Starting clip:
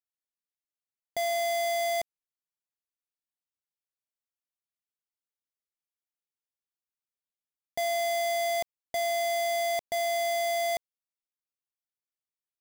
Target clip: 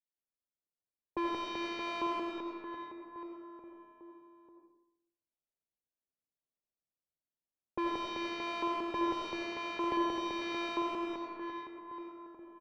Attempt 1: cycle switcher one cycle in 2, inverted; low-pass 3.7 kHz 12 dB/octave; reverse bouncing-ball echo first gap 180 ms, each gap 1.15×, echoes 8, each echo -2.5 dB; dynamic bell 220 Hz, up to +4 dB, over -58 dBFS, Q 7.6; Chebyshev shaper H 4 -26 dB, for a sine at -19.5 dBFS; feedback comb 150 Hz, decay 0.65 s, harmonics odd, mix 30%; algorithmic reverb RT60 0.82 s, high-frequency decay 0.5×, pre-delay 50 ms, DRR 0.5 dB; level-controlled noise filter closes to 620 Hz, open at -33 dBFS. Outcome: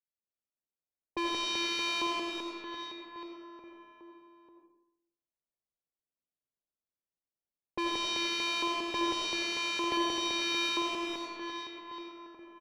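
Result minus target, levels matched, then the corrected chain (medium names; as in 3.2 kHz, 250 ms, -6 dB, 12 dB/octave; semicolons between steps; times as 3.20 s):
4 kHz band +7.5 dB
cycle switcher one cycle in 2, inverted; low-pass 1.5 kHz 12 dB/octave; reverse bouncing-ball echo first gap 180 ms, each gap 1.15×, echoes 8, each echo -2.5 dB; dynamic bell 220 Hz, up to +4 dB, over -58 dBFS, Q 7.6; Chebyshev shaper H 4 -26 dB, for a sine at -19.5 dBFS; feedback comb 150 Hz, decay 0.65 s, harmonics odd, mix 30%; algorithmic reverb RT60 0.82 s, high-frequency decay 0.5×, pre-delay 50 ms, DRR 0.5 dB; level-controlled noise filter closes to 620 Hz, open at -33 dBFS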